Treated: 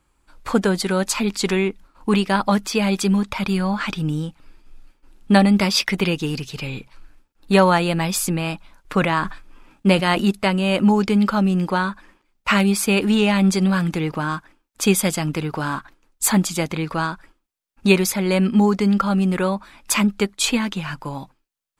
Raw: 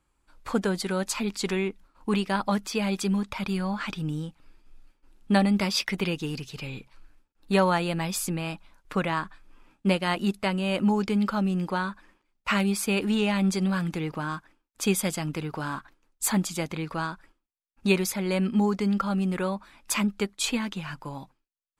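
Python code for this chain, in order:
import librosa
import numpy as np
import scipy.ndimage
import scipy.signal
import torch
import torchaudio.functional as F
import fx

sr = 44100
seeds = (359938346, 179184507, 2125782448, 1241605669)

y = fx.sustainer(x, sr, db_per_s=99.0, at=(8.94, 10.24))
y = y * librosa.db_to_amplitude(7.5)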